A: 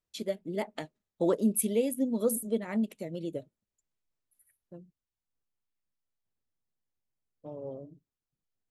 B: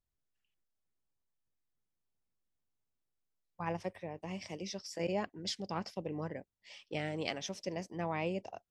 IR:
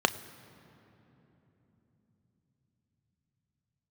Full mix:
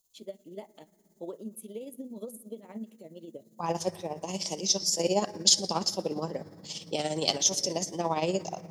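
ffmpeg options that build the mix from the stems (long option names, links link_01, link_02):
-filter_complex "[0:a]alimiter=limit=-22.5dB:level=0:latency=1:release=221,volume=-9.5dB,asplit=2[link_01][link_02];[link_02]volume=-16.5dB[link_03];[1:a]aexciter=amount=10:drive=3:freq=4000,volume=-0.5dB,asplit=2[link_04][link_05];[link_05]volume=-4.5dB[link_06];[2:a]atrim=start_sample=2205[link_07];[link_03][link_06]amix=inputs=2:normalize=0[link_08];[link_08][link_07]afir=irnorm=-1:irlink=0[link_09];[link_01][link_04][link_09]amix=inputs=3:normalize=0,equalizer=frequency=6900:width=1.5:gain=2,tremolo=f=17:d=0.58"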